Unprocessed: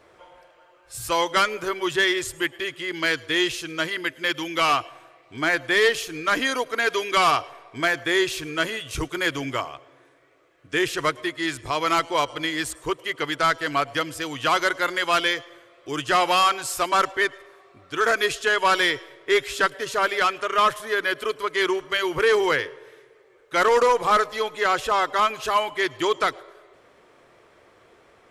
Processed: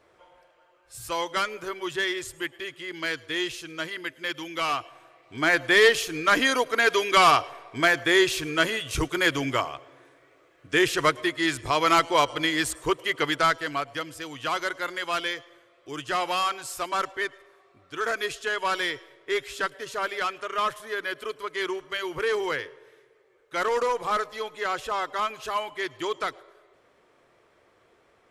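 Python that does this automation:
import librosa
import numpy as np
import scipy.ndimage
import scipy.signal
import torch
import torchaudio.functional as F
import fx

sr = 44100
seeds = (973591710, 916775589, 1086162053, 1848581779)

y = fx.gain(x, sr, db=fx.line((4.77, -6.5), (5.61, 1.5), (13.29, 1.5), (13.85, -7.0)))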